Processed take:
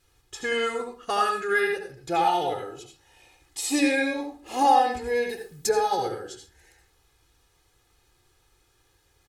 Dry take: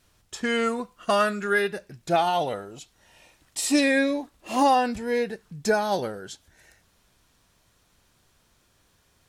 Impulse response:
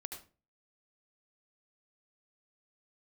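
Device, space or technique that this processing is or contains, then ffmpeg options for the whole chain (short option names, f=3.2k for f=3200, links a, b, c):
microphone above a desk: -filter_complex "[0:a]aecho=1:1:2.4:0.75[a];[1:a]atrim=start_sample=2205[b];[a][b]afir=irnorm=-1:irlink=0,asettb=1/sr,asplit=3[c][d][e];[c]atrim=end=5.294[f];[d]atrim=start=5.29:end=5.69,asetpts=PTS-STARTPTS,afade=t=in:d=0.004:c=qsin,afade=t=out:st=0.396:d=0.004:c=qsin,aemphasis=mode=production:type=50fm[g];[e]atrim=start=5.686[h];[f][g]acrossfade=d=0.004:c1=hsin:c2=qsin[i];[i][h]acrossfade=d=0.004:c1=qsin:c2=hsin"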